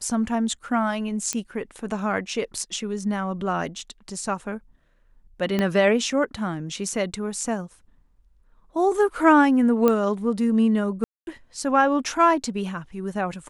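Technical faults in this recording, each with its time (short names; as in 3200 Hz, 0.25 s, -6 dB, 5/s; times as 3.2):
1.33 pop -10 dBFS
5.59 pop -11 dBFS
9.88 pop -8 dBFS
11.04–11.27 gap 0.231 s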